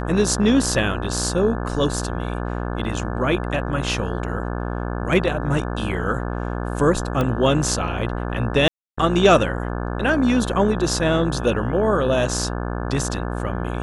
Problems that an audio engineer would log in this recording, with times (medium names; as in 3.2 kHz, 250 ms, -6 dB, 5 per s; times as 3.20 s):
buzz 60 Hz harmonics 29 -26 dBFS
7.21 s: pop -11 dBFS
8.68–8.97 s: dropout 295 ms